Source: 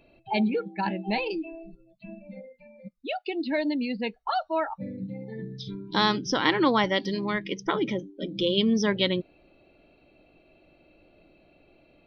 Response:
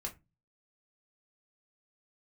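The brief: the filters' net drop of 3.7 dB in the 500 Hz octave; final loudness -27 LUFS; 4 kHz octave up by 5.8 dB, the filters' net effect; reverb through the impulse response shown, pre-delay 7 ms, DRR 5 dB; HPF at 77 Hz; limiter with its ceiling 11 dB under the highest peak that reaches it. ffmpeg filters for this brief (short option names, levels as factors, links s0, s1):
-filter_complex "[0:a]highpass=77,equalizer=f=500:t=o:g=-5,equalizer=f=4000:t=o:g=7.5,alimiter=limit=0.126:level=0:latency=1,asplit=2[s0][s1];[1:a]atrim=start_sample=2205,adelay=7[s2];[s1][s2]afir=irnorm=-1:irlink=0,volume=0.596[s3];[s0][s3]amix=inputs=2:normalize=0,volume=1.26"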